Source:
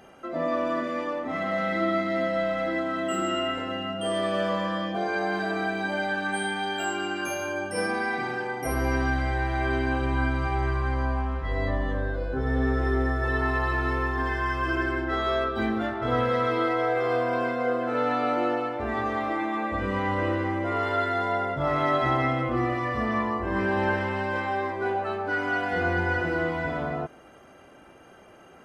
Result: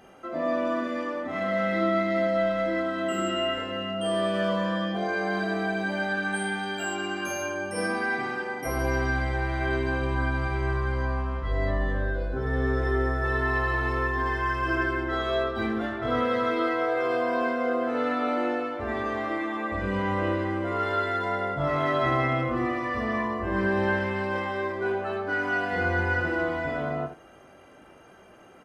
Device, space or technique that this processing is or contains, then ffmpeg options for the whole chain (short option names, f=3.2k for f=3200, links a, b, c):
slapback doubling: -filter_complex "[0:a]asplit=3[a][b][c];[b]adelay=21,volume=-6.5dB[d];[c]adelay=77,volume=-9dB[e];[a][d][e]amix=inputs=3:normalize=0,volume=-2dB"